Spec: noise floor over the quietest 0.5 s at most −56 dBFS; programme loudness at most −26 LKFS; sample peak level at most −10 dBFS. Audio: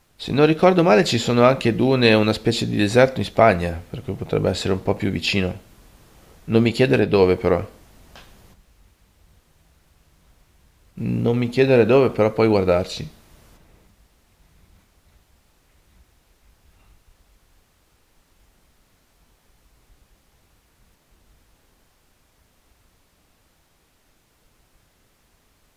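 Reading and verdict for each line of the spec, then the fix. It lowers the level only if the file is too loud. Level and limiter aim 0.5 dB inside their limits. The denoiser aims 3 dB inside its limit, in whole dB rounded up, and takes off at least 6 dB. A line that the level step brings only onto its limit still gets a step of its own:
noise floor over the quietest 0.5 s −62 dBFS: in spec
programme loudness −18.5 LKFS: out of spec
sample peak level −2.0 dBFS: out of spec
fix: level −8 dB
brickwall limiter −10.5 dBFS

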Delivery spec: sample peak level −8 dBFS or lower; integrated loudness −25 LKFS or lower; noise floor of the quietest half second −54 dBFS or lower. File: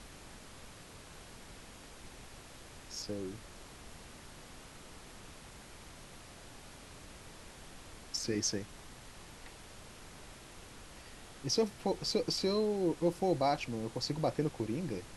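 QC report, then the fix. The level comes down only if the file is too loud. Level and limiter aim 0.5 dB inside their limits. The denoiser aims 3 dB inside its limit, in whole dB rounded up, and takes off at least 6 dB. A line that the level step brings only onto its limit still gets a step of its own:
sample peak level −19.0 dBFS: in spec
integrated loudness −34.5 LKFS: in spec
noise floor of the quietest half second −52 dBFS: out of spec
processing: broadband denoise 6 dB, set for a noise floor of −52 dBFS

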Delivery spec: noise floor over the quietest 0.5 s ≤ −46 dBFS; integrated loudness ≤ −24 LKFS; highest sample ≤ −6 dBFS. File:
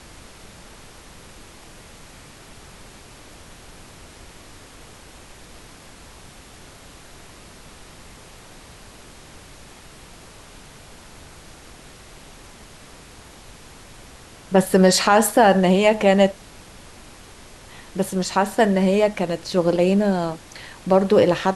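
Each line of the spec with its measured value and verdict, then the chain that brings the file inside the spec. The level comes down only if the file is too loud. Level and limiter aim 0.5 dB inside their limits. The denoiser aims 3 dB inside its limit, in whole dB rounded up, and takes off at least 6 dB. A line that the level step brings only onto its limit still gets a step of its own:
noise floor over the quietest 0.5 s −44 dBFS: out of spec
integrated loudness −18.0 LKFS: out of spec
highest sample −4.0 dBFS: out of spec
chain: level −6.5 dB

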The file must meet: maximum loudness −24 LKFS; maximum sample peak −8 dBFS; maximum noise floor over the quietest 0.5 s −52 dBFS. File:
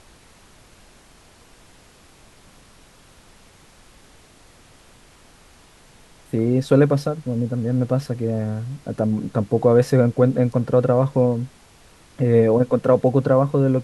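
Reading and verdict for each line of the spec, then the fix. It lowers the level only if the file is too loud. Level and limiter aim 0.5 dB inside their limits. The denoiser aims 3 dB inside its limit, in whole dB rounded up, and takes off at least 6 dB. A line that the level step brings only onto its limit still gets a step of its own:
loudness −19.5 LKFS: out of spec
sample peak −4.0 dBFS: out of spec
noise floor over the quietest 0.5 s −50 dBFS: out of spec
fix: level −5 dB

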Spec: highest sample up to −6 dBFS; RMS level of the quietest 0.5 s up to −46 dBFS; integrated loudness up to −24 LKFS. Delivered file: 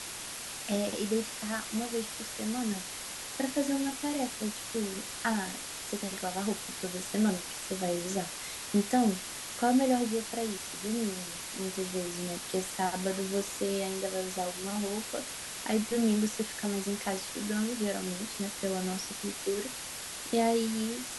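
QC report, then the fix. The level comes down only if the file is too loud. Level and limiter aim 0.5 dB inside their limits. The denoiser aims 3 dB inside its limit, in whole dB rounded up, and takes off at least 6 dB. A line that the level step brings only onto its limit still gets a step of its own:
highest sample −15.5 dBFS: in spec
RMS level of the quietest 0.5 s −41 dBFS: out of spec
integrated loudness −32.5 LKFS: in spec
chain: broadband denoise 8 dB, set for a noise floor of −41 dBFS

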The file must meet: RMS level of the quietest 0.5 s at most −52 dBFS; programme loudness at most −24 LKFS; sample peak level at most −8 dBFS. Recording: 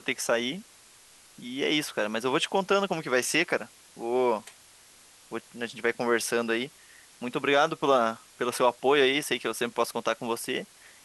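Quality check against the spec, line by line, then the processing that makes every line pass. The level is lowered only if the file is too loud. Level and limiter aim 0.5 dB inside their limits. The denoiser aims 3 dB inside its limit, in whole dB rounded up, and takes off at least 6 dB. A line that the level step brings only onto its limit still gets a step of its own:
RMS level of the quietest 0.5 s −55 dBFS: in spec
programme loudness −27.0 LKFS: in spec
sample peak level −9.0 dBFS: in spec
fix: no processing needed

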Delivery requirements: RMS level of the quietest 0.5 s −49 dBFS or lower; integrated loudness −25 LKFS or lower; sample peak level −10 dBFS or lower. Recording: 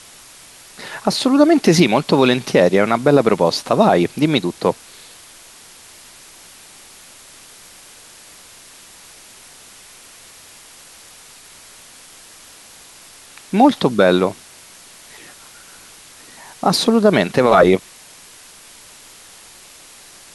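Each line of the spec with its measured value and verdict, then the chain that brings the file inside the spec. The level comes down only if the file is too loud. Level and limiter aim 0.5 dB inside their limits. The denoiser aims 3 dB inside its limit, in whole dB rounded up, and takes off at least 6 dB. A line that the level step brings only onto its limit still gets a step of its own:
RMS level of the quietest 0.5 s −43 dBFS: out of spec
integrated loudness −15.0 LKFS: out of spec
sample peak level −1.5 dBFS: out of spec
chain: level −10.5 dB

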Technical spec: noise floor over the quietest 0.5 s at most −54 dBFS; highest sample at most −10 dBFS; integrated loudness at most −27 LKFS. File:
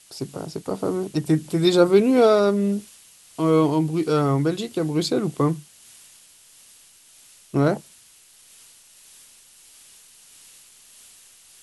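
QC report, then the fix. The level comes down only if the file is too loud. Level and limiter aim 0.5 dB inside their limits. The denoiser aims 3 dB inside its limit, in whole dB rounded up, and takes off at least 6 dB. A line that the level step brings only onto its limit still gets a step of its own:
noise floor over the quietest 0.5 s −52 dBFS: out of spec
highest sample −4.5 dBFS: out of spec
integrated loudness −21.5 LKFS: out of spec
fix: level −6 dB

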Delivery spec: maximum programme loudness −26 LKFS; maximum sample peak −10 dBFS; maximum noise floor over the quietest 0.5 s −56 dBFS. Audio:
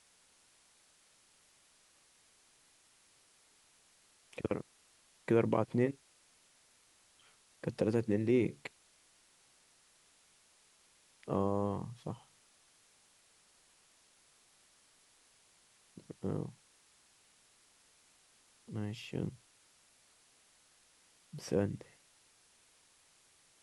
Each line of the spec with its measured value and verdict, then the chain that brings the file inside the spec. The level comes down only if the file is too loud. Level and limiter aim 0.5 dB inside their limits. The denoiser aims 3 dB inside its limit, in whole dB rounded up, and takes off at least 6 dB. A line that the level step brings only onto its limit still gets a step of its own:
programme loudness −36.0 LKFS: in spec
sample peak −16.5 dBFS: in spec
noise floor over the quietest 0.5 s −68 dBFS: in spec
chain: no processing needed

